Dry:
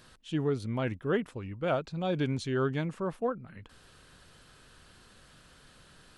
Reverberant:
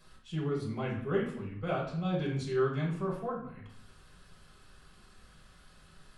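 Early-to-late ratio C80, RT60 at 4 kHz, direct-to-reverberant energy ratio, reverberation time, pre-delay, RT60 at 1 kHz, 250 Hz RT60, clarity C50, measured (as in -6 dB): 9.0 dB, 0.50 s, -5.0 dB, 0.65 s, 4 ms, 0.65 s, 0.95 s, 4.5 dB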